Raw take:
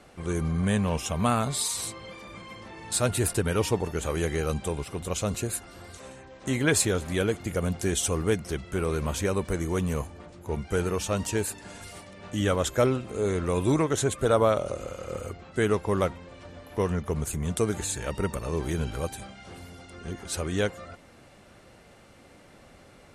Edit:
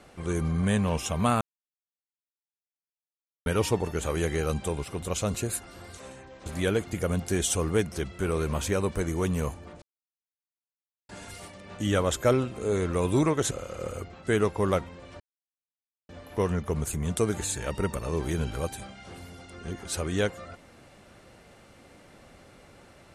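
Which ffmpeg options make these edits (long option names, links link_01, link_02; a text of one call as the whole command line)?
ffmpeg -i in.wav -filter_complex "[0:a]asplit=8[link_01][link_02][link_03][link_04][link_05][link_06][link_07][link_08];[link_01]atrim=end=1.41,asetpts=PTS-STARTPTS,afade=type=out:start_time=1.406:duration=0.004:curve=hsin[link_09];[link_02]atrim=start=1.41:end=3.46,asetpts=PTS-STARTPTS,volume=0[link_10];[link_03]atrim=start=3.46:end=6.462,asetpts=PTS-STARTPTS,afade=type=in:duration=0.004:curve=hsin[link_11];[link_04]atrim=start=6.988:end=10.35,asetpts=PTS-STARTPTS,afade=type=out:start_time=3.358:duration=0.004:curve=hsin[link_12];[link_05]atrim=start=10.35:end=11.62,asetpts=PTS-STARTPTS,volume=0[link_13];[link_06]atrim=start=11.62:end=14.042,asetpts=PTS-STARTPTS,afade=type=in:duration=0.004:curve=hsin[link_14];[link_07]atrim=start=14.798:end=16.49,asetpts=PTS-STARTPTS,afade=type=out:start_time=1.688:duration=0.004:curve=hsin,apad=pad_dur=0.89[link_15];[link_08]atrim=start=16.49,asetpts=PTS-STARTPTS,afade=type=in:duration=0.004:curve=hsin[link_16];[link_09][link_10][link_11]concat=n=3:v=0:a=1[link_17];[link_12][link_13][link_14]concat=n=3:v=0:a=1[link_18];[link_17][link_18]acrossfade=duration=0.004:curve1=hsin:curve2=hsin[link_19];[link_15][link_16]concat=n=2:v=0:a=1[link_20];[link_19][link_20]acrossfade=duration=0.004:curve1=hsin:curve2=hsin" out.wav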